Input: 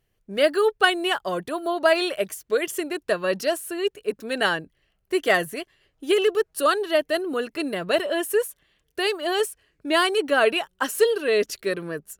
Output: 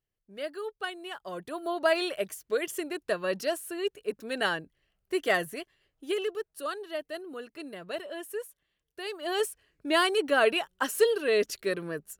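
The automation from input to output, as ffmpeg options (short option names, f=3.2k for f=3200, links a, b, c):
-af "volume=4dB,afade=t=in:st=1.11:d=0.62:silence=0.298538,afade=t=out:st=5.55:d=0.96:silence=0.398107,afade=t=in:st=9.05:d=0.42:silence=0.316228"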